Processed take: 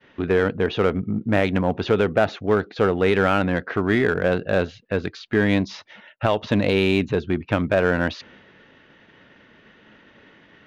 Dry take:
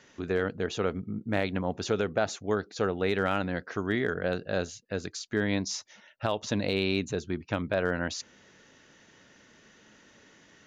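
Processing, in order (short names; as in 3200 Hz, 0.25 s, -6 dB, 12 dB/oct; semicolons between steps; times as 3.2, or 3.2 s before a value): expander -53 dBFS; LPF 3400 Hz 24 dB/oct; in parallel at -5 dB: hard clip -28 dBFS, distortion -7 dB; on the sum: gain +6.5 dB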